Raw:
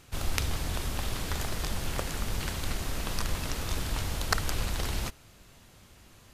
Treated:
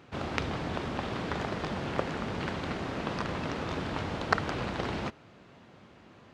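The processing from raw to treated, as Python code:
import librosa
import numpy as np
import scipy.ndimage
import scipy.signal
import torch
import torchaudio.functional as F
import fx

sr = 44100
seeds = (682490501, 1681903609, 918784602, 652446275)

y = scipy.signal.sosfilt(scipy.signal.butter(2, 170.0, 'highpass', fs=sr, output='sos'), x)
y = fx.spacing_loss(y, sr, db_at_10k=33)
y = y * librosa.db_to_amplitude(7.5)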